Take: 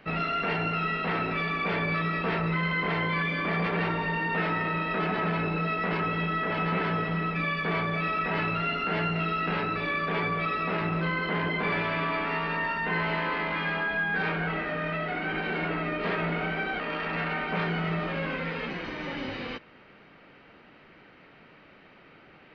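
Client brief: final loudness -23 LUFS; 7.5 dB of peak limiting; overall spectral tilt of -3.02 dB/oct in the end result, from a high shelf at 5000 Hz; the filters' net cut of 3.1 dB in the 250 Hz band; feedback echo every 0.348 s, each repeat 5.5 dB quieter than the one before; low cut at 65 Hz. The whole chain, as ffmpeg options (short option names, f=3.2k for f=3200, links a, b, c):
-af "highpass=65,equalizer=f=250:t=o:g=-5.5,highshelf=f=5k:g=5,alimiter=level_in=1dB:limit=-24dB:level=0:latency=1,volume=-1dB,aecho=1:1:348|696|1044|1392|1740|2088|2436:0.531|0.281|0.149|0.079|0.0419|0.0222|0.0118,volume=8dB"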